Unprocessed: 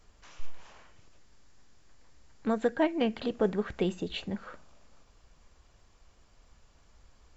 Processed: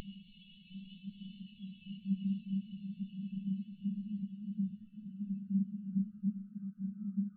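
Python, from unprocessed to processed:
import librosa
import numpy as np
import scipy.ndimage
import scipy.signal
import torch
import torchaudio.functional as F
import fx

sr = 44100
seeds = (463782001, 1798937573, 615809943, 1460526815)

y = fx.brickwall_bandstop(x, sr, low_hz=250.0, high_hz=1100.0)
y = fx.paulstretch(y, sr, seeds[0], factor=34.0, window_s=0.5, from_s=4.17)
y = fx.spectral_expand(y, sr, expansion=2.5)
y = F.gain(torch.from_numpy(y), 1.0).numpy()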